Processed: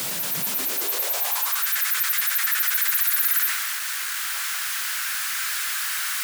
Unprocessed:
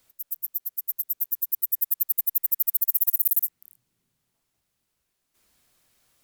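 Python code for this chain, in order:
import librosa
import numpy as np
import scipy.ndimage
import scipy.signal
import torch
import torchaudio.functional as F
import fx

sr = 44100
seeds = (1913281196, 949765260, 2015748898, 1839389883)

y = x + 0.5 * 10.0 ** (-29.5 / 20.0) * np.sign(x)
y = fx.low_shelf(y, sr, hz=340.0, db=-9.0)
y = fx.power_curve(y, sr, exponent=0.7)
y = fx.filter_sweep_highpass(y, sr, from_hz=160.0, to_hz=1500.0, start_s=0.35, end_s=1.69, q=3.2)
y = fx.transient(y, sr, attack_db=-5, sustain_db=4)
y = F.gain(torch.from_numpy(y), -1.5).numpy()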